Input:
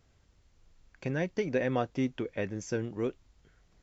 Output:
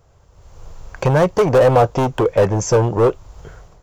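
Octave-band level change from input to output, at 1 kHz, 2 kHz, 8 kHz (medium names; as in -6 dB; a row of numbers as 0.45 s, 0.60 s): +21.5 dB, +11.0 dB, no reading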